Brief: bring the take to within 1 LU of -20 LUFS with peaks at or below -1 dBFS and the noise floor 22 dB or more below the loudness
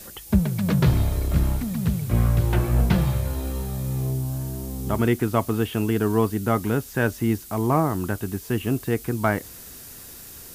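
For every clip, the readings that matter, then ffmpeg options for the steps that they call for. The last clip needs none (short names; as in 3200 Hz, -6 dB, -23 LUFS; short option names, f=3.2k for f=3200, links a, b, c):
noise floor -42 dBFS; noise floor target -46 dBFS; loudness -24.0 LUFS; peak -6.5 dBFS; loudness target -20.0 LUFS
-> -af "afftdn=nr=6:nf=-42"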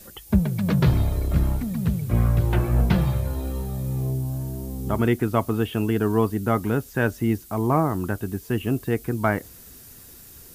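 noise floor -46 dBFS; loudness -24.0 LUFS; peak -6.5 dBFS; loudness target -20.0 LUFS
-> -af "volume=4dB"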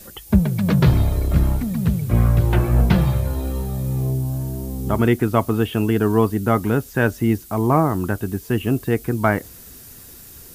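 loudness -20.0 LUFS; peak -2.5 dBFS; noise floor -42 dBFS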